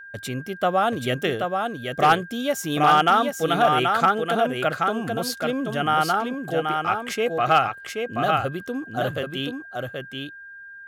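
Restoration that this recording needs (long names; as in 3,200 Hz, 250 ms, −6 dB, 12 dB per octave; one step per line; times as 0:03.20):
clipped peaks rebuilt −9 dBFS
notch filter 1,600 Hz, Q 30
echo removal 780 ms −4.5 dB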